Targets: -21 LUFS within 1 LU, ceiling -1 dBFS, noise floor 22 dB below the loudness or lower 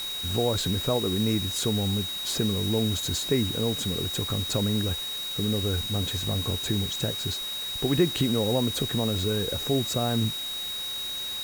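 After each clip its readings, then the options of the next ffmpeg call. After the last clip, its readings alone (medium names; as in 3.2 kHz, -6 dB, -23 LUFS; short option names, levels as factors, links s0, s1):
steady tone 3.8 kHz; tone level -31 dBFS; noise floor -33 dBFS; noise floor target -49 dBFS; loudness -26.5 LUFS; peak level -10.5 dBFS; loudness target -21.0 LUFS
-> -af "bandreject=f=3800:w=30"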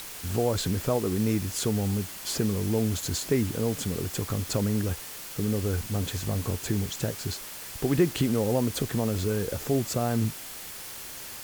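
steady tone not found; noise floor -40 dBFS; noise floor target -51 dBFS
-> -af "afftdn=nr=11:nf=-40"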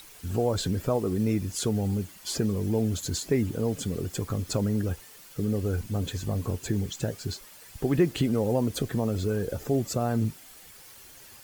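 noise floor -50 dBFS; noise floor target -51 dBFS
-> -af "afftdn=nr=6:nf=-50"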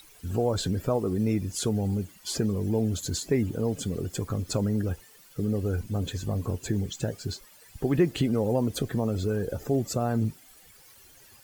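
noise floor -54 dBFS; loudness -28.5 LUFS; peak level -11.5 dBFS; loudness target -21.0 LUFS
-> -af "volume=2.37"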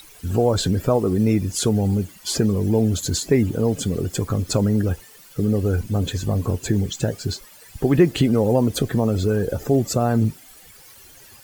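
loudness -21.0 LUFS; peak level -4.0 dBFS; noise floor -47 dBFS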